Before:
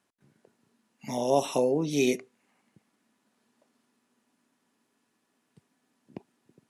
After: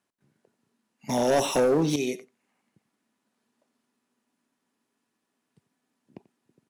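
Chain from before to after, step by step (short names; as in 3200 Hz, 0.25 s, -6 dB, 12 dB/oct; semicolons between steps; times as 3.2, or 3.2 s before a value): 1.09–1.96 sample leveller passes 3; on a send: echo 89 ms -19 dB; on the sum: gain -4.5 dB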